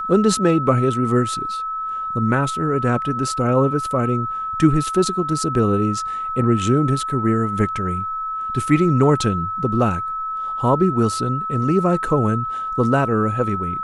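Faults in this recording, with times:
whine 1.3 kHz -23 dBFS

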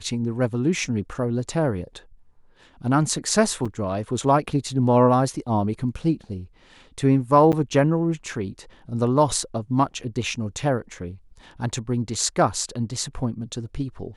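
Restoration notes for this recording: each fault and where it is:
3.65–3.66 s: dropout 5.4 ms
7.52–7.53 s: dropout 8.9 ms

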